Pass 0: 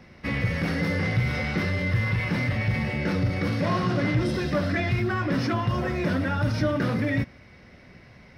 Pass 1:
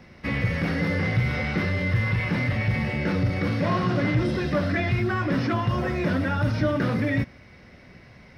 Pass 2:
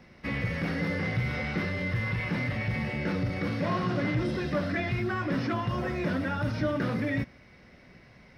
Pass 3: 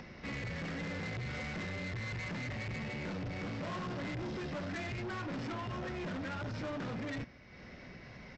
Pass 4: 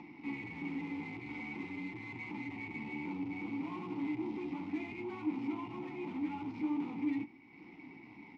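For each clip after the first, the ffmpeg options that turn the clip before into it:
ffmpeg -i in.wav -filter_complex "[0:a]acrossover=split=4200[link_01][link_02];[link_02]acompressor=threshold=-50dB:ratio=4:attack=1:release=60[link_03];[link_01][link_03]amix=inputs=2:normalize=0,volume=1dB" out.wav
ffmpeg -i in.wav -af "equalizer=frequency=92:width=2.2:gain=-4.5,volume=-4.5dB" out.wav
ffmpeg -i in.wav -af "acompressor=mode=upward:threshold=-39dB:ratio=2.5,aresample=16000,asoftclip=type=tanh:threshold=-34.5dB,aresample=44100,volume=-2.5dB" out.wav
ffmpeg -i in.wav -filter_complex "[0:a]aeval=exprs='0.0178*(cos(1*acos(clip(val(0)/0.0178,-1,1)))-cos(1*PI/2))+0.00178*(cos(6*acos(clip(val(0)/0.0178,-1,1)))-cos(6*PI/2))':channel_layout=same,asplit=3[link_01][link_02][link_03];[link_01]bandpass=frequency=300:width_type=q:width=8,volume=0dB[link_04];[link_02]bandpass=frequency=870:width_type=q:width=8,volume=-6dB[link_05];[link_03]bandpass=frequency=2240:width_type=q:width=8,volume=-9dB[link_06];[link_04][link_05][link_06]amix=inputs=3:normalize=0,flanger=delay=5.7:depth=7.8:regen=-40:speed=0.52:shape=triangular,volume=14.5dB" out.wav

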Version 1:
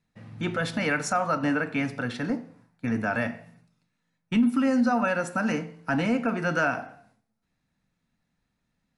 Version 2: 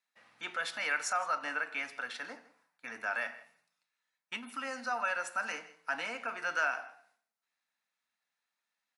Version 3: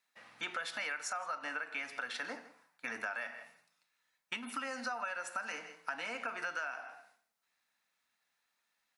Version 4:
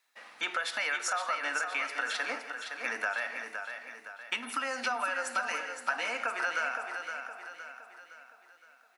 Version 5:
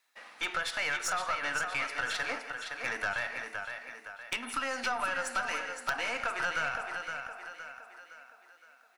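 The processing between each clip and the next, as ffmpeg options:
ffmpeg -i in.wav -af "highpass=970,aecho=1:1:161:0.1,volume=-3.5dB" out.wav
ffmpeg -i in.wav -af "acompressor=threshold=-41dB:ratio=10,volume=5.5dB" out.wav
ffmpeg -i in.wav -filter_complex "[0:a]highpass=340,asplit=2[link_01][link_02];[link_02]aecho=0:1:515|1030|1545|2060|2575:0.447|0.205|0.0945|0.0435|0.02[link_03];[link_01][link_03]amix=inputs=2:normalize=0,volume=6.5dB" out.wav
ffmpeg -i in.wav -af "aeval=exprs='0.178*(cos(1*acos(clip(val(0)/0.178,-1,1)))-cos(1*PI/2))+0.02*(cos(5*acos(clip(val(0)/0.178,-1,1)))-cos(5*PI/2))+0.00631*(cos(6*acos(clip(val(0)/0.178,-1,1)))-cos(6*PI/2))+0.0158*(cos(8*acos(clip(val(0)/0.178,-1,1)))-cos(8*PI/2))':channel_layout=same,aeval=exprs='(mod(7.08*val(0)+1,2)-1)/7.08':channel_layout=same,volume=-3.5dB" out.wav

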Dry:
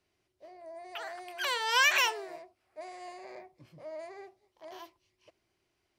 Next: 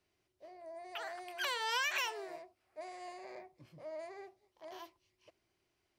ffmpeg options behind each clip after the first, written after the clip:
ffmpeg -i in.wav -af "acompressor=threshold=-29dB:ratio=6,volume=-2.5dB" out.wav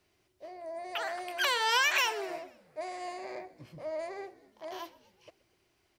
ffmpeg -i in.wav -filter_complex "[0:a]asplit=5[link_01][link_02][link_03][link_04][link_05];[link_02]adelay=124,afreqshift=-61,volume=-20dB[link_06];[link_03]adelay=248,afreqshift=-122,volume=-25.2dB[link_07];[link_04]adelay=372,afreqshift=-183,volume=-30.4dB[link_08];[link_05]adelay=496,afreqshift=-244,volume=-35.6dB[link_09];[link_01][link_06][link_07][link_08][link_09]amix=inputs=5:normalize=0,volume=8dB" out.wav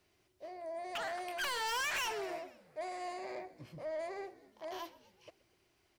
ffmpeg -i in.wav -af "asoftclip=type=tanh:threshold=-32dB,volume=-1dB" out.wav

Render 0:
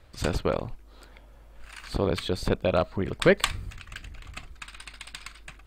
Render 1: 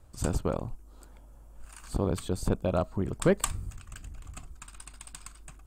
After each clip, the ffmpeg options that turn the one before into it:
ffmpeg -i in.wav -af "equalizer=frequency=500:width_type=o:width=1:gain=-5,equalizer=frequency=2000:width_type=o:width=1:gain=-12,equalizer=frequency=4000:width_type=o:width=1:gain=-11,equalizer=frequency=8000:width_type=o:width=1:gain=6" out.wav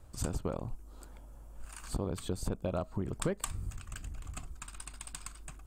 ffmpeg -i in.wav -af "acompressor=threshold=-32dB:ratio=4,volume=1dB" out.wav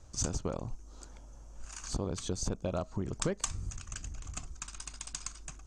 ffmpeg -i in.wav -af "lowpass=frequency=6200:width_type=q:width=5.7" out.wav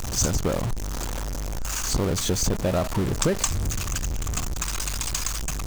ffmpeg -i in.wav -af "aeval=exprs='val(0)+0.5*0.0251*sgn(val(0))':channel_layout=same,volume=7.5dB" out.wav

